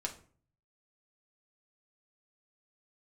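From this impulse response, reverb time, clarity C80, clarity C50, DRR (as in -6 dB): 0.45 s, 17.0 dB, 12.5 dB, 0.5 dB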